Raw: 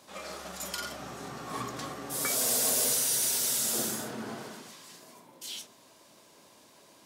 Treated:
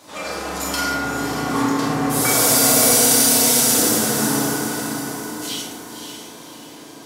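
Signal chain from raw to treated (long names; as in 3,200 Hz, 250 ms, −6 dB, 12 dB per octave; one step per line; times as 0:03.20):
feedback delay with all-pass diffusion 560 ms, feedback 44%, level −7 dB
feedback delay network reverb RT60 2.3 s, low-frequency decay 1.3×, high-frequency decay 0.3×, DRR −6.5 dB
level +7.5 dB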